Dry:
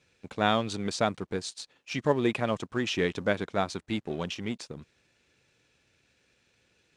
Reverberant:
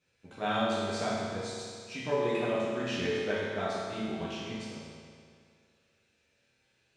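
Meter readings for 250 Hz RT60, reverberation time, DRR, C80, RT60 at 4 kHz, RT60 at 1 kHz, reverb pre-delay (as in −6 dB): 2.1 s, 2.1 s, −9.5 dB, −0.5 dB, 1.9 s, 2.1 s, 9 ms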